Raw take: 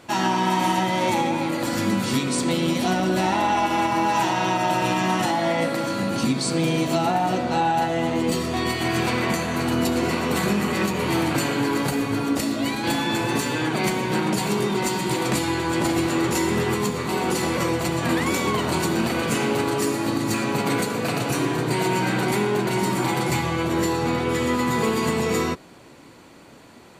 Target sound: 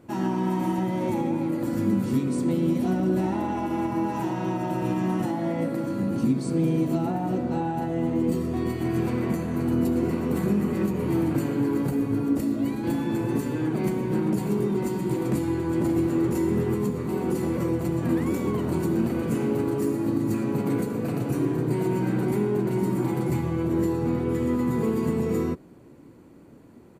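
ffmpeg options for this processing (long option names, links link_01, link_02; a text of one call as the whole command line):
ffmpeg -i in.wav -af "firequalizer=gain_entry='entry(330,0);entry(670,-10);entry(3600,-20);entry(13000,-8)':delay=0.05:min_phase=1" out.wav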